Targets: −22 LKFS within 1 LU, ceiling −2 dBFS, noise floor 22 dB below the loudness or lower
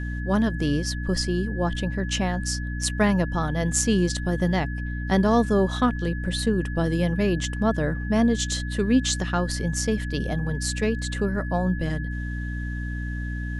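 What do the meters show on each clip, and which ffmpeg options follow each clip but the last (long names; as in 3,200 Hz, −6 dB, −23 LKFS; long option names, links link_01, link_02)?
mains hum 60 Hz; hum harmonics up to 300 Hz; level of the hum −27 dBFS; interfering tone 1,700 Hz; level of the tone −37 dBFS; integrated loudness −25.0 LKFS; sample peak −8.5 dBFS; target loudness −22.0 LKFS
→ -af "bandreject=frequency=60:width_type=h:width=6,bandreject=frequency=120:width_type=h:width=6,bandreject=frequency=180:width_type=h:width=6,bandreject=frequency=240:width_type=h:width=6,bandreject=frequency=300:width_type=h:width=6"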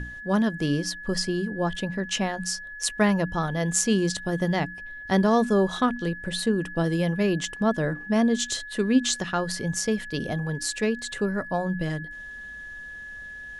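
mains hum none found; interfering tone 1,700 Hz; level of the tone −37 dBFS
→ -af "bandreject=frequency=1700:width=30"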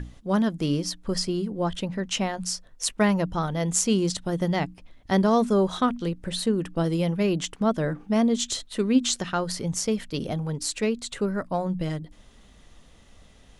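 interfering tone none found; integrated loudness −26.0 LKFS; sample peak −8.5 dBFS; target loudness −22.0 LKFS
→ -af "volume=4dB"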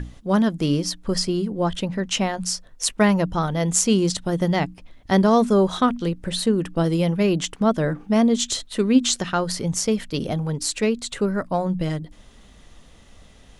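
integrated loudness −22.0 LKFS; sample peak −4.5 dBFS; background noise floor −49 dBFS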